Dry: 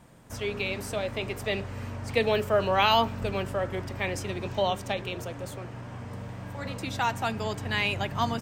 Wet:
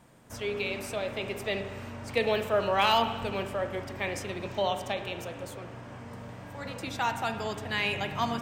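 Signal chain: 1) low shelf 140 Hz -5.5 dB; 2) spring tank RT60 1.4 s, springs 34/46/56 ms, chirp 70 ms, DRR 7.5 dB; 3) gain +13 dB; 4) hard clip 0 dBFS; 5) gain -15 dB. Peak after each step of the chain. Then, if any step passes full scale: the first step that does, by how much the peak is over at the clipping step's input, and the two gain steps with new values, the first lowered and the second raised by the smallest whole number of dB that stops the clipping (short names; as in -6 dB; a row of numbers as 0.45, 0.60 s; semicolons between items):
-10.5, -10.0, +3.0, 0.0, -15.0 dBFS; step 3, 3.0 dB; step 3 +10 dB, step 5 -12 dB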